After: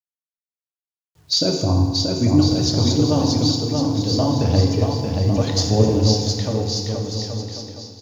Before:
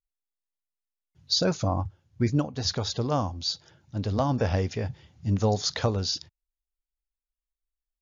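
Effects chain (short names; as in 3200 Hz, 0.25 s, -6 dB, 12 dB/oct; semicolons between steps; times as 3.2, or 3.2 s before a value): HPF 94 Hz 6 dB/oct; bell 1500 Hz -13 dB 2 oct; bit-crush 11-bit; phaser 1.1 Hz, delay 3.9 ms, feedback 41%; bouncing-ball echo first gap 0.63 s, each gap 0.75×, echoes 5; 5.38–5.88 reverse; FDN reverb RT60 1.6 s, low-frequency decay 1×, high-frequency decay 0.8×, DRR 1.5 dB; 2.51–3.52 three-band squash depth 40%; gain +6.5 dB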